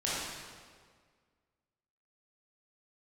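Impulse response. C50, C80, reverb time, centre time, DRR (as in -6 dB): -3.5 dB, -0.5 dB, 1.8 s, 0.121 s, -9.0 dB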